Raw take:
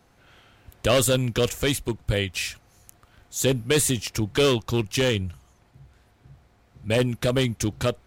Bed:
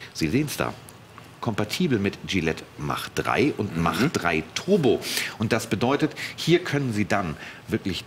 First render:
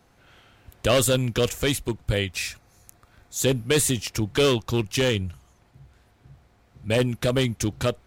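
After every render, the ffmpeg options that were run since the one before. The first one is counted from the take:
-filter_complex "[0:a]asettb=1/sr,asplit=3[a][b][c];[a]atrim=end=2.324[d];[b]atrim=start=2.32:end=3.36,asetpts=PTS-STARTPTS,afade=t=in:d=0.004:c=qsin,afade=t=out:st=1.036:d=0.004:c=qsin,bandreject=f=3k:w=8.1[e];[c]atrim=start=3.356[f];[d][e]acrossfade=d=0.004:c1=hsin:c2=qsin[g];[g][f]acrossfade=d=0.004:c1=qsin:c2=hsin"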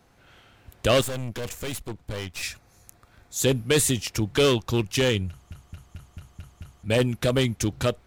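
-filter_complex "[0:a]asettb=1/sr,asplit=3[a][b][c];[a]atrim=end=1.014[d];[b]atrim=start=1.01:end=2.43,asetpts=PTS-STARTPTS,afade=t=in:d=0.004:c=qsin,afade=t=out:st=1.416:d=0.004:c=qsin,aeval=exprs='(tanh(28.2*val(0)+0.75)-tanh(0.75))/28.2':c=same[e];[c]atrim=start=2.426[f];[d][e]acrossfade=d=0.004:c1=hsin:c2=qsin[g];[g][f]acrossfade=d=0.004:c1=qsin:c2=hsin,asplit=8[h][i][j][k][l][m][n][o];[h]atrim=end=5.512[p];[i]atrim=start=5.288:end=5.512[q];[j]atrim=start=5.288:end=5.512[r];[k]atrim=start=5.288:end=5.512[s];[l]atrim=start=5.288:end=5.512[t];[m]atrim=start=5.288:end=5.512[u];[n]atrim=start=5.288:end=5.512[v];[o]atrim=start=6.828[w];[p][q]acrossfade=d=0.004:c1=hsin:c2=hsin[x];[x][r]acrossfade=d=0.004:c1=hsin:c2=hsin[y];[y][s]acrossfade=d=0.004:c1=hsin:c2=hsin[z];[z][t]acrossfade=d=0.004:c1=hsin:c2=hsin[aa];[aa][u]acrossfade=d=0.004:c1=hsin:c2=hsin[ab];[ab][v]acrossfade=d=0.004:c1=hsin:c2=hsin[ac];[ac][w]acrossfade=d=0.004:c1=hsin:c2=hsin"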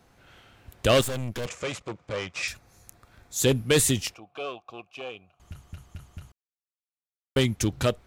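-filter_complex "[0:a]asettb=1/sr,asplit=3[a][b][c];[a]atrim=end=1.464[d];[b]atrim=start=1.46:end=2.48,asetpts=PTS-STARTPTS,afade=t=in:d=0.004:c=qsin,afade=t=out:st=1.016:d=0.004:c=qsin,highpass=130,equalizer=f=250:t=q:w=4:g=-6,equalizer=f=550:t=q:w=4:g=7,equalizer=f=1.2k:t=q:w=4:g=7,equalizer=f=2.3k:t=q:w=4:g=5,equalizer=f=4.1k:t=q:w=4:g=-3,lowpass=f=7.3k:w=0.5412,lowpass=f=7.3k:w=1.3066[e];[c]atrim=start=2.476[f];[d][e]acrossfade=d=0.004:c1=hsin:c2=qsin[g];[g][f]acrossfade=d=0.004:c1=qsin:c2=hsin,asettb=1/sr,asplit=3[h][i][j];[h]atrim=end=4.144[k];[i]atrim=start=4.14:end=5.4,asetpts=PTS-STARTPTS,afade=t=in:d=0.004:c=qsin,afade=t=out:st=1.256:d=0.004:c=qsin,asplit=3[l][m][n];[l]bandpass=f=730:t=q:w=8,volume=0dB[o];[m]bandpass=f=1.09k:t=q:w=8,volume=-6dB[p];[n]bandpass=f=2.44k:t=q:w=8,volume=-9dB[q];[o][p][q]amix=inputs=3:normalize=0[r];[j]atrim=start=5.396[s];[k][r]acrossfade=d=0.004:c1=hsin:c2=qsin[t];[t][s]acrossfade=d=0.004:c1=qsin:c2=hsin,asplit=3[u][v][w];[u]atrim=end=6.32,asetpts=PTS-STARTPTS,afade=t=out:st=6.316:d=0.004:c=hsin[x];[v]atrim=start=6.32:end=7.36,asetpts=PTS-STARTPTS,volume=0[y];[w]atrim=start=7.36,asetpts=PTS-STARTPTS,afade=t=in:d=0.004:c=hsin[z];[x][y][z]concat=n=3:v=0:a=1"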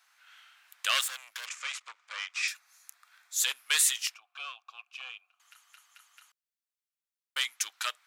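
-af "highpass=f=1.2k:w=0.5412,highpass=f=1.2k:w=1.3066"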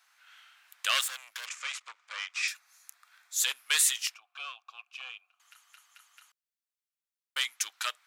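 -af anull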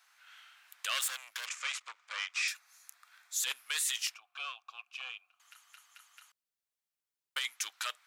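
-af "alimiter=limit=-22.5dB:level=0:latency=1:release=16"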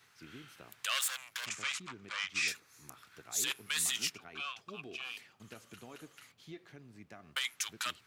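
-filter_complex "[1:a]volume=-29.5dB[a];[0:a][a]amix=inputs=2:normalize=0"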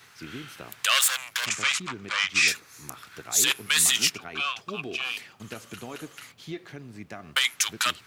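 -af "volume=12dB"

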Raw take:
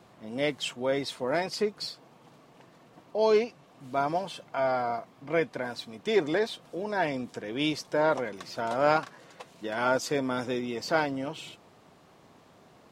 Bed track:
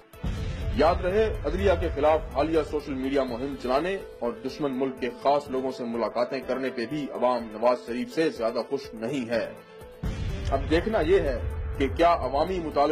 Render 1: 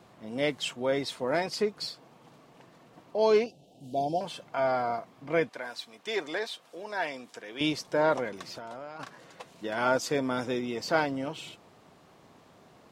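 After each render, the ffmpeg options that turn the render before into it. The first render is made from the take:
-filter_complex "[0:a]asettb=1/sr,asplit=3[a][b][c];[a]atrim=end=3.464[d];[b]atrim=start=3.46:end=4.21,asetpts=PTS-STARTPTS,afade=t=in:d=0.004:c=qsin,afade=t=out:st=0.746:d=0.004:c=qsin,asuperstop=centerf=1500:order=12:qfactor=0.76[e];[c]atrim=start=4.206[f];[d][e]acrossfade=d=0.004:c1=hsin:c2=qsin[g];[g][f]acrossfade=d=0.004:c1=qsin:c2=hsin,asettb=1/sr,asplit=3[h][i][j];[h]atrim=end=5.494[k];[i]atrim=start=5.49:end=7.61,asetpts=PTS-STARTPTS,afade=t=in:d=0.004:c=qsin,afade=t=out:st=2.116:d=0.004:c=qsin,highpass=f=950:p=1[l];[j]atrim=start=7.606[m];[k][l]acrossfade=d=0.004:c1=hsin:c2=qsin[n];[n][m]acrossfade=d=0.004:c1=qsin:c2=hsin,asplit=3[o][p][q];[o]afade=t=out:st=8.46:d=0.02[r];[p]acompressor=threshold=-37dB:ratio=16:attack=3.2:release=140:knee=1:detection=peak,afade=t=in:st=8.46:d=0.02,afade=t=out:st=8.99:d=0.02[s];[q]afade=t=in:st=8.99:d=0.02[t];[r][s][t]amix=inputs=3:normalize=0"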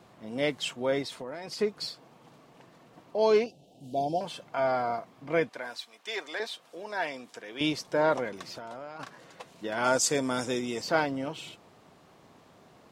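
-filter_complex "[0:a]asettb=1/sr,asplit=3[a][b][c];[a]atrim=end=1.024[d];[b]atrim=start=1.02:end=1.59,asetpts=PTS-STARTPTS,afade=t=in:d=0.004:c=qsin,afade=t=out:st=0.566:d=0.004:c=qsin,acompressor=threshold=-34dB:ratio=10:attack=3.2:release=140:knee=1:detection=peak[e];[c]atrim=start=1.586[f];[d][e]acrossfade=d=0.004:c1=hsin:c2=qsin[g];[g][f]acrossfade=d=0.004:c1=qsin:c2=hsin,asettb=1/sr,asplit=3[h][i][j];[h]atrim=end=5.774[k];[i]atrim=start=5.77:end=6.4,asetpts=PTS-STARTPTS,afade=t=in:d=0.004:c=qsin,afade=t=out:st=0.626:d=0.004:c=qsin,highpass=f=800:p=1[l];[j]atrim=start=6.396[m];[k][l]acrossfade=d=0.004:c1=hsin:c2=qsin[n];[n][m]acrossfade=d=0.004:c1=qsin:c2=hsin,asettb=1/sr,asplit=3[o][p][q];[o]atrim=end=9.844[r];[p]atrim=start=9.84:end=10.82,asetpts=PTS-STARTPTS,afade=t=in:d=0.004:c=qsin,afade=t=out:st=0.976:d=0.004:c=qsin,equalizer=f=8k:t=o:w=1.1:g=15[s];[q]atrim=start=10.816[t];[r][s]acrossfade=d=0.004:c1=hsin:c2=qsin[u];[u][t]acrossfade=d=0.004:c1=qsin:c2=hsin"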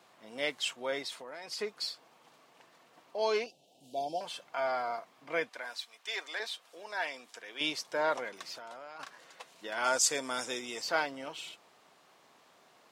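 -af "highpass=f=1.1k:p=1"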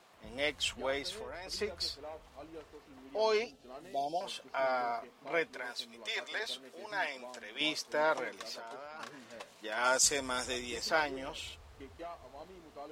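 -filter_complex "[1:a]volume=-25dB[a];[0:a][a]amix=inputs=2:normalize=0"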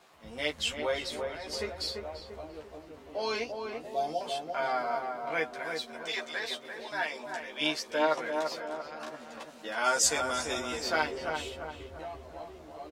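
-filter_complex "[0:a]asplit=2[a][b];[b]adelay=13,volume=-2dB[c];[a][c]amix=inputs=2:normalize=0,asplit=2[d][e];[e]adelay=342,lowpass=f=1.4k:p=1,volume=-4dB,asplit=2[f][g];[g]adelay=342,lowpass=f=1.4k:p=1,volume=0.52,asplit=2[h][i];[i]adelay=342,lowpass=f=1.4k:p=1,volume=0.52,asplit=2[j][k];[k]adelay=342,lowpass=f=1.4k:p=1,volume=0.52,asplit=2[l][m];[m]adelay=342,lowpass=f=1.4k:p=1,volume=0.52,asplit=2[n][o];[o]adelay=342,lowpass=f=1.4k:p=1,volume=0.52,asplit=2[p][q];[q]adelay=342,lowpass=f=1.4k:p=1,volume=0.52[r];[f][h][j][l][n][p][r]amix=inputs=7:normalize=0[s];[d][s]amix=inputs=2:normalize=0"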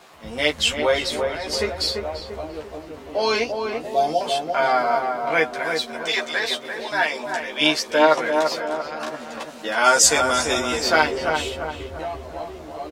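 -af "volume=11.5dB,alimiter=limit=-2dB:level=0:latency=1"

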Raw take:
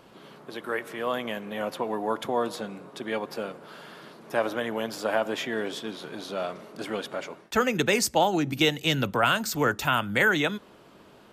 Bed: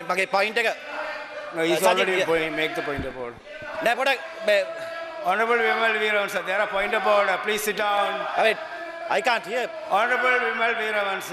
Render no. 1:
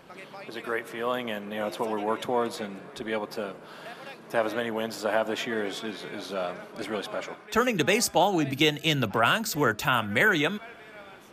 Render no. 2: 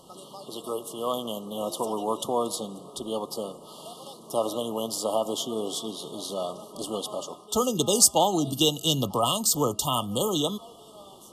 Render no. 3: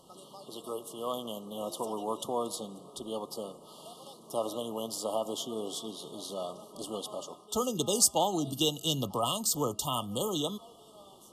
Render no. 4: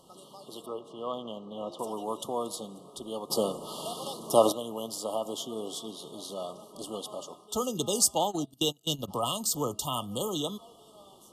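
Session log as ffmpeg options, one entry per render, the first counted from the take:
-filter_complex "[1:a]volume=-22.5dB[a];[0:a][a]amix=inputs=2:normalize=0"
-af "afftfilt=real='re*(1-between(b*sr/4096,1300,2800))':imag='im*(1-between(b*sr/4096,1300,2800))':win_size=4096:overlap=0.75,equalizer=f=9.3k:t=o:w=1.3:g=13.5"
-af "volume=-6dB"
-filter_complex "[0:a]asettb=1/sr,asplit=3[a][b][c];[a]atrim=end=0.664[d];[b]atrim=start=0.66:end=1.79,asetpts=PTS-STARTPTS,afade=t=in:d=0.004:c=qsin,afade=t=out:st=1.126:d=0.004:c=qsin,lowpass=3.2k[e];[c]atrim=start=1.786[f];[d][e]acrossfade=d=0.004:c1=hsin:c2=qsin[g];[g][f]acrossfade=d=0.004:c1=qsin:c2=hsin,asplit=3[h][i][j];[h]afade=t=out:st=8.2:d=0.02[k];[i]agate=range=-23dB:threshold=-32dB:ratio=16:release=100:detection=peak,afade=t=in:st=8.2:d=0.02,afade=t=out:st=9.07:d=0.02[l];[j]afade=t=in:st=9.07:d=0.02[m];[k][l][m]amix=inputs=3:normalize=0,asplit=3[n][o][p];[n]atrim=end=3.302[q];[o]atrim=start=3.298:end=4.522,asetpts=PTS-STARTPTS,volume=11.5dB[r];[p]atrim=start=4.518[s];[q][r]acrossfade=d=0.004:c1=hsin:c2=hsin[t];[t][s]acrossfade=d=0.004:c1=hsin:c2=hsin"

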